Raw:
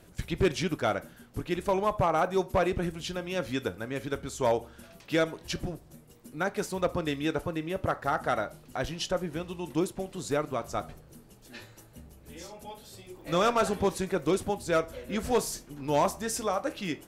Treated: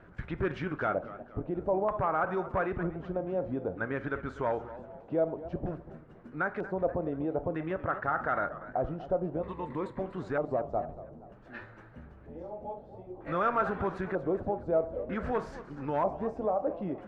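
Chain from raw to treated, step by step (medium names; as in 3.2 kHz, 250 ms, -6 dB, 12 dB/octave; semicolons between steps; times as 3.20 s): 9.41–10.01 s: rippled EQ curve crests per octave 1, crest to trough 11 dB; peak limiter -24.5 dBFS, peak gain reduction 7.5 dB; LFO low-pass square 0.53 Hz 690–1500 Hz; modulated delay 238 ms, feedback 41%, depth 168 cents, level -15 dB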